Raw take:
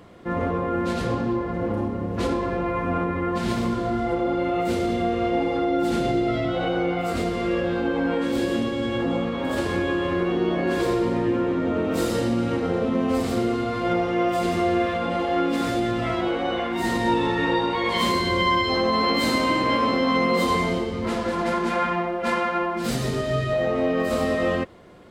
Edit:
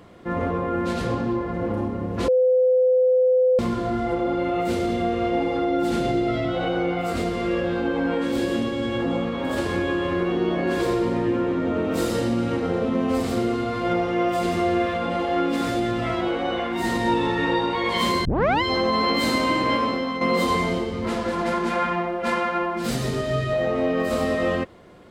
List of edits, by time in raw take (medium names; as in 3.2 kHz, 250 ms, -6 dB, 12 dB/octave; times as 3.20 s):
2.28–3.59 s: bleep 509 Hz -14.5 dBFS
18.25 s: tape start 0.37 s
19.73–20.21 s: fade out, to -9 dB